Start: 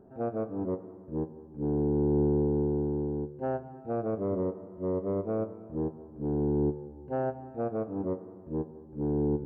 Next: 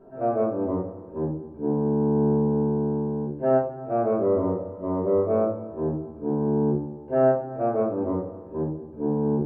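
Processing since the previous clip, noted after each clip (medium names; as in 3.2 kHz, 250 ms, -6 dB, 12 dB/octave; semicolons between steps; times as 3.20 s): tone controls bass -8 dB, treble -9 dB; simulated room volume 310 m³, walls furnished, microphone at 5.5 m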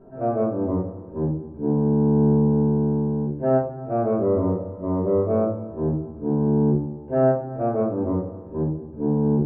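tone controls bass +7 dB, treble -11 dB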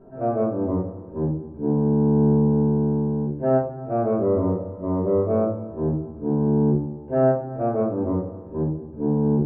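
no audible change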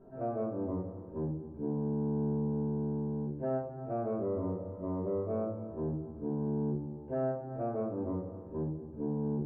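compression 2:1, threshold -27 dBFS, peak gain reduction 7.5 dB; trim -7.5 dB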